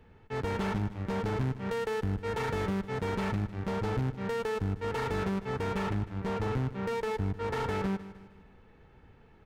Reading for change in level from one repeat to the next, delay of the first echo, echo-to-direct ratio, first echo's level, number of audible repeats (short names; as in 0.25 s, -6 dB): -7.0 dB, 0.154 s, -14.0 dB, -15.0 dB, 3